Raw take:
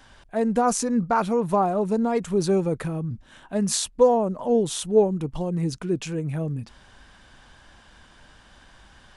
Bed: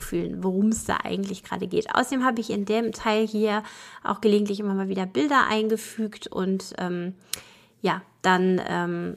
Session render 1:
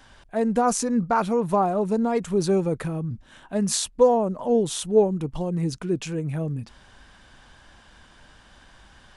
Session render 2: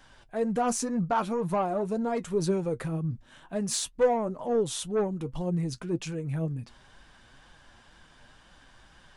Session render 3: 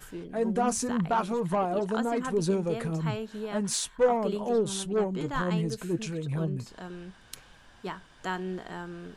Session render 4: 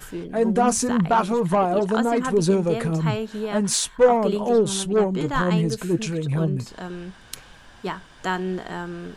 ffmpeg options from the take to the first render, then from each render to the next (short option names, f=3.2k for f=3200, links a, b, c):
-af anull
-af "asoftclip=type=tanh:threshold=-14dB,flanger=delay=5.4:depth=3.4:regen=51:speed=2:shape=triangular"
-filter_complex "[1:a]volume=-13dB[a];[0:a][a]amix=inputs=2:normalize=0"
-af "volume=7.5dB"